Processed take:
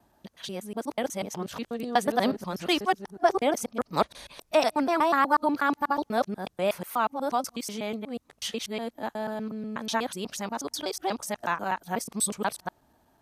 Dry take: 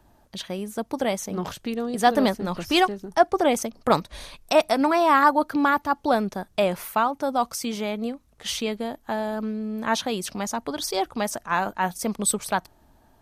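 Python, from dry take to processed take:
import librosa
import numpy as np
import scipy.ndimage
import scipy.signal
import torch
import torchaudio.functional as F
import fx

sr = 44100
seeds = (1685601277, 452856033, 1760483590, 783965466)

y = fx.local_reverse(x, sr, ms=122.0)
y = fx.highpass(y, sr, hz=130.0, slope=6)
y = y * librosa.db_to_amplitude(-4.0)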